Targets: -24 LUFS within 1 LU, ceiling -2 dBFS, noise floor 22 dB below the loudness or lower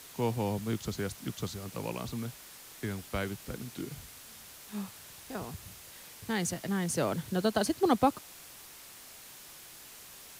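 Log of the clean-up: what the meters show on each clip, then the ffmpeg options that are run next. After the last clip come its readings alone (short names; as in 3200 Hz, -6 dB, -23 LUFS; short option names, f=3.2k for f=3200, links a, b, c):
noise floor -51 dBFS; noise floor target -56 dBFS; loudness -34.0 LUFS; peak -12.5 dBFS; loudness target -24.0 LUFS
-> -af "afftdn=nr=6:nf=-51"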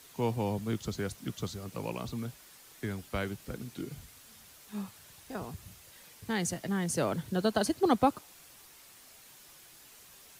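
noise floor -56 dBFS; loudness -34.0 LUFS; peak -12.5 dBFS; loudness target -24.0 LUFS
-> -af "volume=10dB"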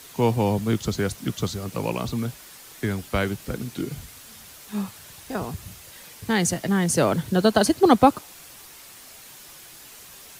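loudness -24.0 LUFS; peak -2.5 dBFS; noise floor -46 dBFS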